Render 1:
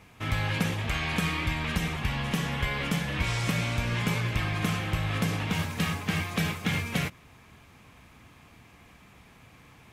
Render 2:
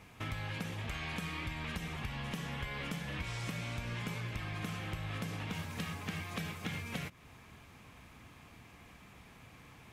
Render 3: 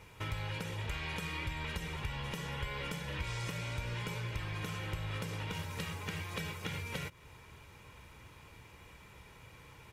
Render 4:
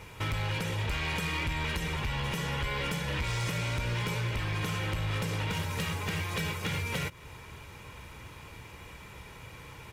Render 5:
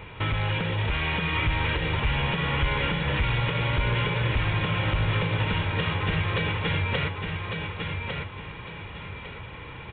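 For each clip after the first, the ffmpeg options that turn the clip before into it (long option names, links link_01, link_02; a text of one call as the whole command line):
ffmpeg -i in.wav -af "acompressor=threshold=-36dB:ratio=4,volume=-2dB" out.wav
ffmpeg -i in.wav -af "aecho=1:1:2.1:0.55" out.wav
ffmpeg -i in.wav -af "volume=35dB,asoftclip=hard,volume=-35dB,volume=8dB" out.wav
ffmpeg -i in.wav -af "aecho=1:1:1152|2304|3456|4608:0.562|0.18|0.0576|0.0184,aresample=8000,aresample=44100,volume=5.5dB" out.wav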